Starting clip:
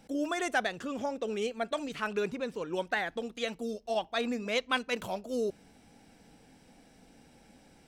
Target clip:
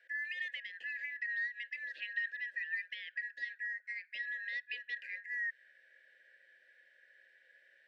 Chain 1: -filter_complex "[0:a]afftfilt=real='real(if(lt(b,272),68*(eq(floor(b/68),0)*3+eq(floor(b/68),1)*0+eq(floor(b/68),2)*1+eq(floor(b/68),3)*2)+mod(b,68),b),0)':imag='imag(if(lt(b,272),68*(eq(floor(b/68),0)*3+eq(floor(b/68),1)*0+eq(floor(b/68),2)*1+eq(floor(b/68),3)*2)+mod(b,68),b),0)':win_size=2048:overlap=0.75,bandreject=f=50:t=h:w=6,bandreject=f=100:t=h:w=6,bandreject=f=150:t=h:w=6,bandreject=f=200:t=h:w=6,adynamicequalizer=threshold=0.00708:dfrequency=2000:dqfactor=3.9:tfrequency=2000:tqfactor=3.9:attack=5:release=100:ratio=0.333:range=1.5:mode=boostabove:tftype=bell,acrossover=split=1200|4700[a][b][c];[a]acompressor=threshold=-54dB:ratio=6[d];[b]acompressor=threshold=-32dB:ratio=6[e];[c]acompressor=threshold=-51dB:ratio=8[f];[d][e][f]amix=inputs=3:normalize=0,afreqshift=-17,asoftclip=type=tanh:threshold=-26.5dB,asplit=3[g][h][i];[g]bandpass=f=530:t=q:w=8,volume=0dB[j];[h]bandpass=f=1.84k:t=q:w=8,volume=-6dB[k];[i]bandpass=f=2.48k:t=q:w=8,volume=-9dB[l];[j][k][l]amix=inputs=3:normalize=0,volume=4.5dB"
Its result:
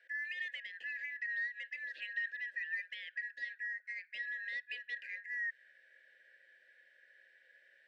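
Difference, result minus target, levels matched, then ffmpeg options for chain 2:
soft clip: distortion +16 dB
-filter_complex "[0:a]afftfilt=real='real(if(lt(b,272),68*(eq(floor(b/68),0)*3+eq(floor(b/68),1)*0+eq(floor(b/68),2)*1+eq(floor(b/68),3)*2)+mod(b,68),b),0)':imag='imag(if(lt(b,272),68*(eq(floor(b/68),0)*3+eq(floor(b/68),1)*0+eq(floor(b/68),2)*1+eq(floor(b/68),3)*2)+mod(b,68),b),0)':win_size=2048:overlap=0.75,bandreject=f=50:t=h:w=6,bandreject=f=100:t=h:w=6,bandreject=f=150:t=h:w=6,bandreject=f=200:t=h:w=6,adynamicequalizer=threshold=0.00708:dfrequency=2000:dqfactor=3.9:tfrequency=2000:tqfactor=3.9:attack=5:release=100:ratio=0.333:range=1.5:mode=boostabove:tftype=bell,acrossover=split=1200|4700[a][b][c];[a]acompressor=threshold=-54dB:ratio=6[d];[b]acompressor=threshold=-32dB:ratio=6[e];[c]acompressor=threshold=-51dB:ratio=8[f];[d][e][f]amix=inputs=3:normalize=0,afreqshift=-17,asoftclip=type=tanh:threshold=-17dB,asplit=3[g][h][i];[g]bandpass=f=530:t=q:w=8,volume=0dB[j];[h]bandpass=f=1.84k:t=q:w=8,volume=-6dB[k];[i]bandpass=f=2.48k:t=q:w=8,volume=-9dB[l];[j][k][l]amix=inputs=3:normalize=0,volume=4.5dB"

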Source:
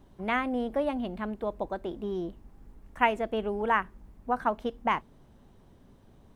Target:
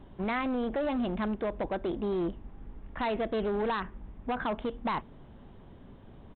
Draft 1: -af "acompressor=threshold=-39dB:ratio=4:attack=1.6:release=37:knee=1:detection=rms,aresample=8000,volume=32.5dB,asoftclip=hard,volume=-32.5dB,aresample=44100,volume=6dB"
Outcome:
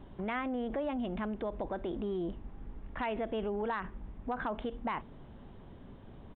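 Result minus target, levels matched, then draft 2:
compressor: peak gain reduction +6.5 dB
-af "acompressor=threshold=-30.5dB:ratio=4:attack=1.6:release=37:knee=1:detection=rms,aresample=8000,volume=32.5dB,asoftclip=hard,volume=-32.5dB,aresample=44100,volume=6dB"

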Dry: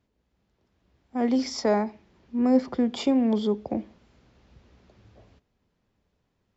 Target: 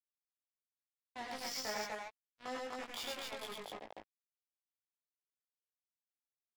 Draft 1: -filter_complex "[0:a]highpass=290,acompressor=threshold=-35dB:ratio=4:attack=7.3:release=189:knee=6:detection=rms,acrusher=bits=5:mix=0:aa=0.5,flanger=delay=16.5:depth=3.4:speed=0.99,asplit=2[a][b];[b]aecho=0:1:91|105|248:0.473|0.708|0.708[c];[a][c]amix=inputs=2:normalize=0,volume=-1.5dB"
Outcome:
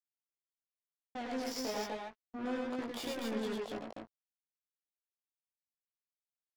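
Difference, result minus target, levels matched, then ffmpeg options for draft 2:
250 Hz band +10.5 dB
-filter_complex "[0:a]highpass=990,acompressor=threshold=-35dB:ratio=4:attack=7.3:release=189:knee=6:detection=rms,acrusher=bits=5:mix=0:aa=0.5,flanger=delay=16.5:depth=3.4:speed=0.99,asplit=2[a][b];[b]aecho=0:1:91|105|248:0.473|0.708|0.708[c];[a][c]amix=inputs=2:normalize=0,volume=-1.5dB"

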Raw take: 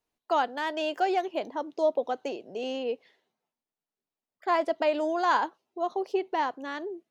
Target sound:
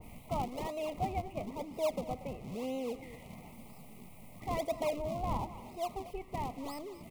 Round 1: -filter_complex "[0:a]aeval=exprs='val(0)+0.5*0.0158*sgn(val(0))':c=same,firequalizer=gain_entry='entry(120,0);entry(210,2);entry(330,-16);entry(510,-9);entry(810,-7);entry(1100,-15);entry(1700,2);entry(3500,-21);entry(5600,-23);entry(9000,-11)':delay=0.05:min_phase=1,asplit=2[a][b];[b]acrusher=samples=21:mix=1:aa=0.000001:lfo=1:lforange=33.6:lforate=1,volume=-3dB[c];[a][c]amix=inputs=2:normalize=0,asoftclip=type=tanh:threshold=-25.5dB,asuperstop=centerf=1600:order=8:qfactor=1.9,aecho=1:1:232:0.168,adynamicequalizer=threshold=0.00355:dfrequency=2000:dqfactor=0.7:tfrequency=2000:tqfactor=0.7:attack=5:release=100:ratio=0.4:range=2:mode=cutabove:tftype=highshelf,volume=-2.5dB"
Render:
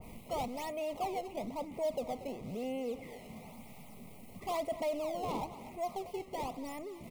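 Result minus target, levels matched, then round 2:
soft clip: distortion +14 dB; decimation with a swept rate: distortion -10 dB
-filter_complex "[0:a]aeval=exprs='val(0)+0.5*0.0158*sgn(val(0))':c=same,firequalizer=gain_entry='entry(120,0);entry(210,2);entry(330,-16);entry(510,-9);entry(810,-7);entry(1100,-15);entry(1700,2);entry(3500,-21);entry(5600,-23);entry(9000,-11)':delay=0.05:min_phase=1,asplit=2[a][b];[b]acrusher=samples=63:mix=1:aa=0.000001:lfo=1:lforange=101:lforate=1,volume=-3dB[c];[a][c]amix=inputs=2:normalize=0,asoftclip=type=tanh:threshold=-16dB,asuperstop=centerf=1600:order=8:qfactor=1.9,aecho=1:1:232:0.168,adynamicequalizer=threshold=0.00355:dfrequency=2000:dqfactor=0.7:tfrequency=2000:tqfactor=0.7:attack=5:release=100:ratio=0.4:range=2:mode=cutabove:tftype=highshelf,volume=-2.5dB"

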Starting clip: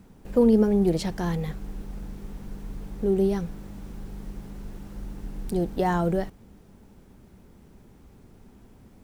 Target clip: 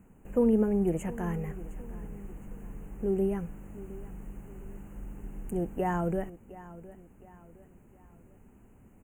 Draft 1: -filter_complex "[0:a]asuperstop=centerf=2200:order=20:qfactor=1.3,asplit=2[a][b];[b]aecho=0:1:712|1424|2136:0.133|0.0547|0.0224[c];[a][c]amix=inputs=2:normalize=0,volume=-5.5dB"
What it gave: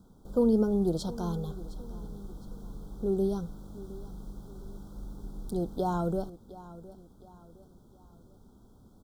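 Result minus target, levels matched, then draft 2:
4000 Hz band +11.0 dB
-filter_complex "[0:a]asuperstop=centerf=4400:order=20:qfactor=1.3,asplit=2[a][b];[b]aecho=0:1:712|1424|2136:0.133|0.0547|0.0224[c];[a][c]amix=inputs=2:normalize=0,volume=-5.5dB"

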